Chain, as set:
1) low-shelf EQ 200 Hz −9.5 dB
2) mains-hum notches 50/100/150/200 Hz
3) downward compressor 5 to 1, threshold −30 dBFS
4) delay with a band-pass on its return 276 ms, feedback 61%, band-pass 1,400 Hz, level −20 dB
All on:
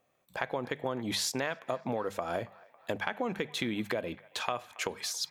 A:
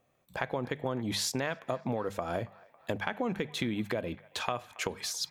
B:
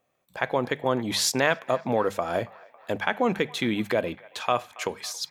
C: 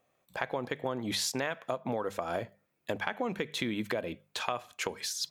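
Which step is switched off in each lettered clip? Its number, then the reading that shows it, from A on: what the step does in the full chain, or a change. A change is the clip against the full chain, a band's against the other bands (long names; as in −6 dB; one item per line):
1, 125 Hz band +5.0 dB
3, average gain reduction 6.5 dB
4, echo-to-direct ratio −19.0 dB to none audible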